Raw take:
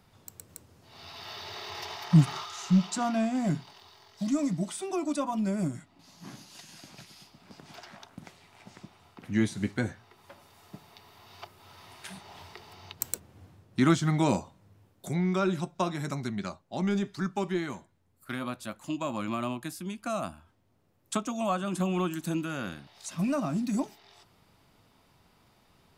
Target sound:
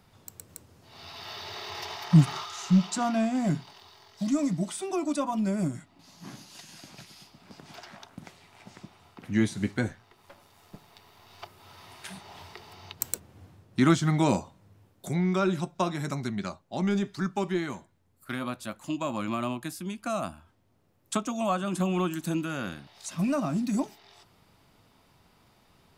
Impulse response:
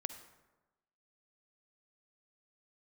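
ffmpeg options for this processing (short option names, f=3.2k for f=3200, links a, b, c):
-filter_complex "[0:a]asettb=1/sr,asplit=3[a][b][c];[a]atrim=end=9.884[d];[b]atrim=start=9.88:end=11.43,asetpts=PTS-STARTPTS,afade=t=in:d=0.004:c=qsin,afade=t=out:st=1.546:d=0.004:c=qsin,aeval=exprs='if(lt(val(0),0),0.447*val(0),val(0))':c=same[e];[c]atrim=start=11.426[f];[d][e]acrossfade=d=0.004:c1=hsin:c2=qsin[g];[g][f]acrossfade=d=0.004:c1=qsin:c2=hsin,volume=1.5dB"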